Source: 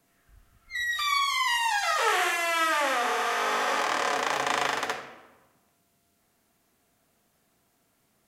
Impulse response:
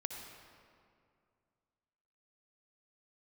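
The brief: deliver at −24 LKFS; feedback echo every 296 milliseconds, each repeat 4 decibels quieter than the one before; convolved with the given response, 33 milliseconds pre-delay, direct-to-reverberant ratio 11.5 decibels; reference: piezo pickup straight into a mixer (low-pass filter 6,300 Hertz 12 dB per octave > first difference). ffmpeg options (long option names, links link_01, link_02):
-filter_complex "[0:a]aecho=1:1:296|592|888|1184|1480|1776|2072|2368|2664:0.631|0.398|0.25|0.158|0.0994|0.0626|0.0394|0.0249|0.0157,asplit=2[link_01][link_02];[1:a]atrim=start_sample=2205,adelay=33[link_03];[link_02][link_03]afir=irnorm=-1:irlink=0,volume=-11dB[link_04];[link_01][link_04]amix=inputs=2:normalize=0,lowpass=6300,aderivative,volume=10.5dB"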